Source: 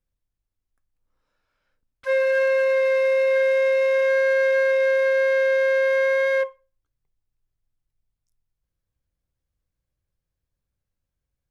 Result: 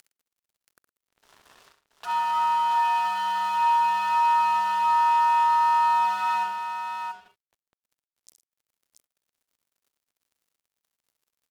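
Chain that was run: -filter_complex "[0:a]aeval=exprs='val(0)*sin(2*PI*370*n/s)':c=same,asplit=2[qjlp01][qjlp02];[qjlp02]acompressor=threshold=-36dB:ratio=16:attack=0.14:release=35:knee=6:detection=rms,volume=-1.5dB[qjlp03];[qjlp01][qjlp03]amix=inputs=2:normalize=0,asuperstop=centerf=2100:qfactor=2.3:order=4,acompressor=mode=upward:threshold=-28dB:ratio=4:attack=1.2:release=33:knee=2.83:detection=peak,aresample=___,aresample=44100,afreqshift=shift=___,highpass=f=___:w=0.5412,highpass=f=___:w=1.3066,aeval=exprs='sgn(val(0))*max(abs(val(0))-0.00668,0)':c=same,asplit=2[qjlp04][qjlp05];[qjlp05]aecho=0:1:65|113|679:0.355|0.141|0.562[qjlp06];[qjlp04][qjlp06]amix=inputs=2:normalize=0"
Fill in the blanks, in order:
32000, 35, 560, 560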